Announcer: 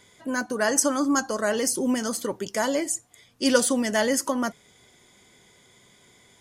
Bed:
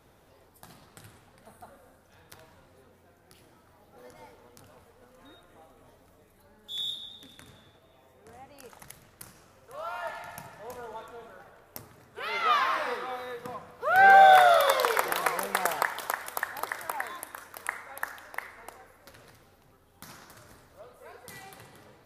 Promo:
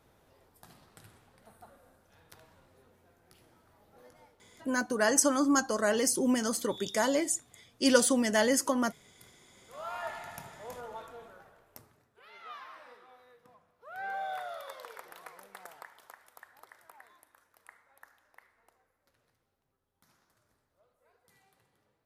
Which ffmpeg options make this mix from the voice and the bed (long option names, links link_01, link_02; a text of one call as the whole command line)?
ffmpeg -i stem1.wav -i stem2.wav -filter_complex "[0:a]adelay=4400,volume=-3dB[link_01];[1:a]volume=6dB,afade=type=out:start_time=3.95:duration=0.44:silence=0.398107,afade=type=in:start_time=9.48:duration=0.47:silence=0.281838,afade=type=out:start_time=11.04:duration=1.17:silence=0.105925[link_02];[link_01][link_02]amix=inputs=2:normalize=0" out.wav